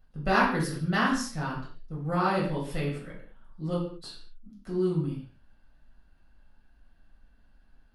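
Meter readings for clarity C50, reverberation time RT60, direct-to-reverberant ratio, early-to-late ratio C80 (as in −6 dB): 4.5 dB, non-exponential decay, −5.5 dB, 8.5 dB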